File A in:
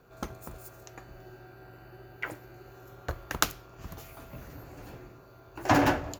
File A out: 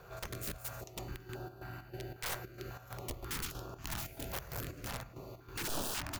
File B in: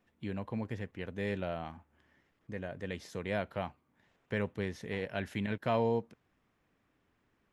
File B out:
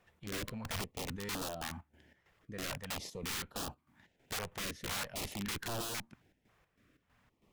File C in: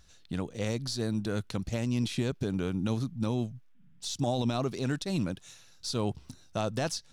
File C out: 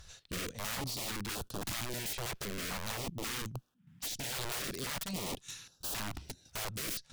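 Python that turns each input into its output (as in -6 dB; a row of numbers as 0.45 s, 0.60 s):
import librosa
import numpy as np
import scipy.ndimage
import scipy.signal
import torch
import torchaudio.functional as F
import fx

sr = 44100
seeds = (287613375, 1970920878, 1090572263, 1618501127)

y = fx.tube_stage(x, sr, drive_db=32.0, bias=0.5)
y = fx.chopper(y, sr, hz=3.1, depth_pct=65, duty_pct=60)
y = (np.mod(10.0 ** (41.0 / 20.0) * y + 1.0, 2.0) - 1.0) / 10.0 ** (41.0 / 20.0)
y = fx.filter_held_notch(y, sr, hz=3.7, low_hz=260.0, high_hz=2100.0)
y = y * 10.0 ** (9.0 / 20.0)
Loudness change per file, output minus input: -11.5 LU, -3.0 LU, -5.5 LU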